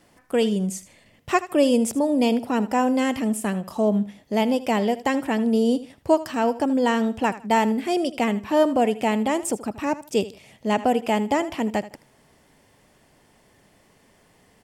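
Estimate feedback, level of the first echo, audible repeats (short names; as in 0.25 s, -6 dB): 25%, -16.0 dB, 2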